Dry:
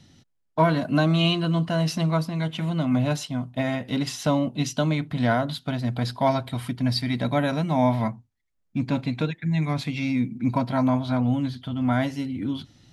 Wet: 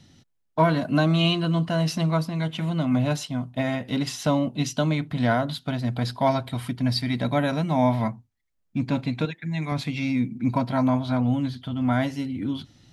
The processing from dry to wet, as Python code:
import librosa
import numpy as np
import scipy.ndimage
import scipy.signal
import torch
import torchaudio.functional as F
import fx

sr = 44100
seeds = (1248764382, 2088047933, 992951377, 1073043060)

y = fx.low_shelf(x, sr, hz=170.0, db=-9.5, at=(9.25, 9.72))